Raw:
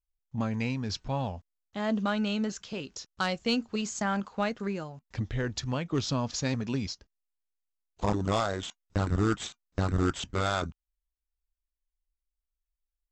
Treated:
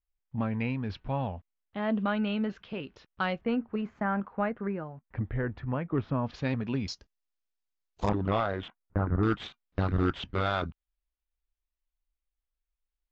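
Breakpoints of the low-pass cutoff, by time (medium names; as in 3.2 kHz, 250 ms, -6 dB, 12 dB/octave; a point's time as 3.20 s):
low-pass 24 dB/octave
3 kHz
from 3.41 s 2 kHz
from 6.26 s 3.2 kHz
from 6.88 s 6.5 kHz
from 8.09 s 3 kHz
from 8.68 s 1.7 kHz
from 9.23 s 3.7 kHz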